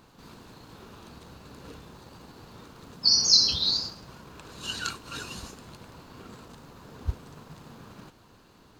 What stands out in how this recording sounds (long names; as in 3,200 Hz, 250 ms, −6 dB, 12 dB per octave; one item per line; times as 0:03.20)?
background noise floor −57 dBFS
spectral slope −1.0 dB per octave